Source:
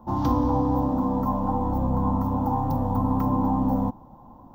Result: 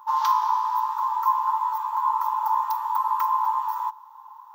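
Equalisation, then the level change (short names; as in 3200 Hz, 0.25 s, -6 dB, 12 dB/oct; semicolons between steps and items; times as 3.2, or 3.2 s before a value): brick-wall FIR high-pass 830 Hz; +9.0 dB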